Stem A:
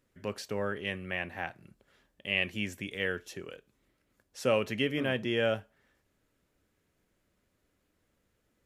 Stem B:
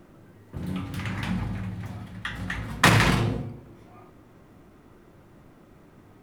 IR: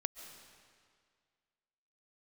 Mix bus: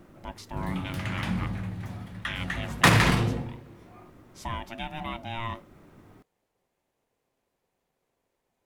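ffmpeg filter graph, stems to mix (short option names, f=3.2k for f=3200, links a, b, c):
-filter_complex "[0:a]alimiter=limit=-18.5dB:level=0:latency=1:release=255,aeval=exprs='val(0)*sin(2*PI*460*n/s)':c=same,volume=-1dB[a];[1:a]volume=-1.5dB,asplit=2[b][c];[c]volume=-20dB[d];[2:a]atrim=start_sample=2205[e];[d][e]afir=irnorm=-1:irlink=0[f];[a][b][f]amix=inputs=3:normalize=0"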